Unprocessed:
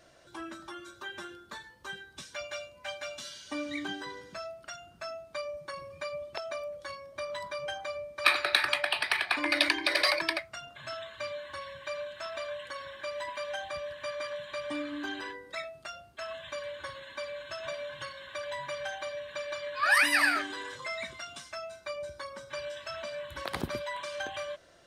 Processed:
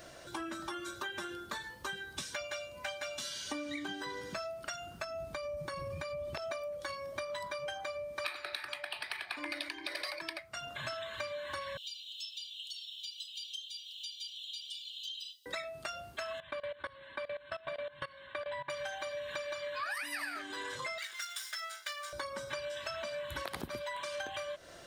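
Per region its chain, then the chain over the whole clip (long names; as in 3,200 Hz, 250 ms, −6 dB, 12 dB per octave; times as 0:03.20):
0:05.04–0:06.51: low-shelf EQ 190 Hz +11.5 dB + downward compressor 4 to 1, threshold −41 dBFS
0:11.77–0:15.46: Butterworth high-pass 2,900 Hz 96 dB per octave + parametric band 10,000 Hz −12 dB 1.3 octaves + multiband upward and downward compressor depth 70%
0:16.40–0:18.70: moving average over 7 samples + output level in coarse steps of 20 dB
0:20.98–0:22.13: lower of the sound and its delayed copy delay 0.56 ms + high-pass filter 1,300 Hz
whole clip: high-shelf EQ 12,000 Hz +9.5 dB; downward compressor 12 to 1, threshold −44 dBFS; level +7.5 dB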